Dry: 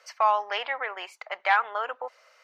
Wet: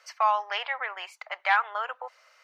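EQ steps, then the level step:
high-pass filter 690 Hz 12 dB per octave
0.0 dB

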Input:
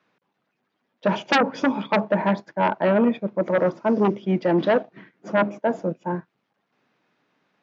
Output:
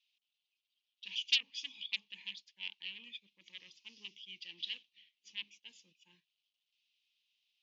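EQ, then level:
elliptic high-pass filter 2,900 Hz, stop band 50 dB
high-frequency loss of the air 74 metres
high-shelf EQ 4,100 Hz −8 dB
+5.5 dB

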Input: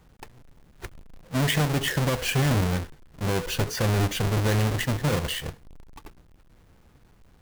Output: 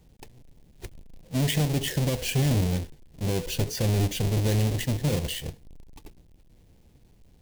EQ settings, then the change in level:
parametric band 1,300 Hz −14 dB 1.2 octaves
0.0 dB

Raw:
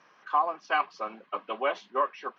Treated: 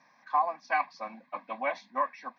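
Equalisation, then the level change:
dynamic equaliser 2,000 Hz, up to +4 dB, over −39 dBFS, Q 1.3
parametric band 250 Hz +11 dB 0.34 octaves
phaser with its sweep stopped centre 2,000 Hz, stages 8
0.0 dB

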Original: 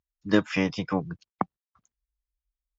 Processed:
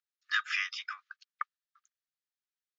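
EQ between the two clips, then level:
Chebyshev high-pass with heavy ripple 1,200 Hz, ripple 3 dB
high-frequency loss of the air 79 metres
+3.5 dB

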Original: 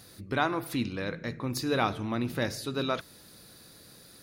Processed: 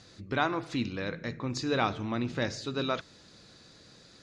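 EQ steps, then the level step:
Chebyshev low-pass filter 7,200 Hz, order 4
0.0 dB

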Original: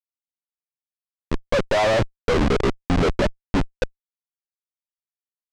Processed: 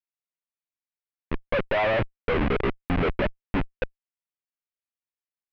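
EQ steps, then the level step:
transistor ladder low-pass 3,100 Hz, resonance 35%
+2.5 dB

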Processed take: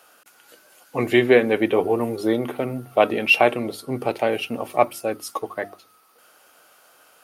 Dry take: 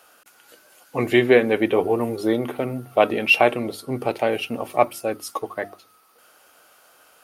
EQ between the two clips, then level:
high-pass filter 78 Hz
0.0 dB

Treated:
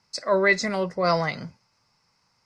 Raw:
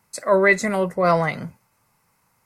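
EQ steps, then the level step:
low-pass with resonance 5,100 Hz, resonance Q 5.5
−4.5 dB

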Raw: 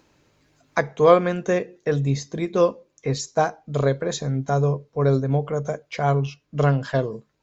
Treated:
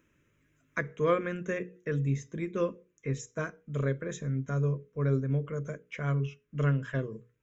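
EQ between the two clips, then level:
mains-hum notches 60/120/180/240/300/360/420/480 Hz
phaser with its sweep stopped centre 1,900 Hz, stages 4
−6.0 dB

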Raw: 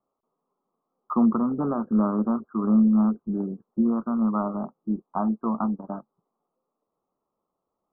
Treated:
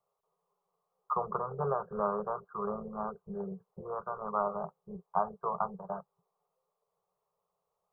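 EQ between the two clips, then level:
elliptic band-stop filter 180–410 Hz, stop band 40 dB
low-shelf EQ 130 Hz −6 dB
notch filter 1,300 Hz, Q 20
0.0 dB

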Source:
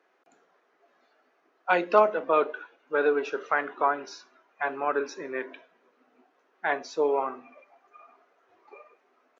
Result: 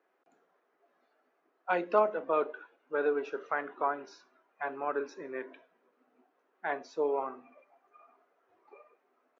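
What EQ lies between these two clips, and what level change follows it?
high-shelf EQ 2,100 Hz −8 dB
−5.0 dB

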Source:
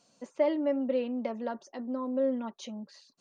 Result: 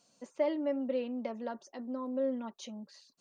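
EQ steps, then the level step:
high-shelf EQ 5,200 Hz +5 dB
−4.0 dB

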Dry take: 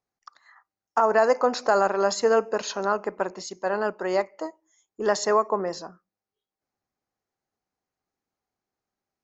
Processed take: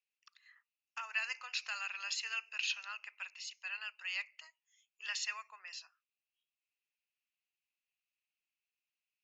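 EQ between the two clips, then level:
four-pole ladder high-pass 2,500 Hz, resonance 80%
high-shelf EQ 4,600 Hz −9.5 dB
+8.0 dB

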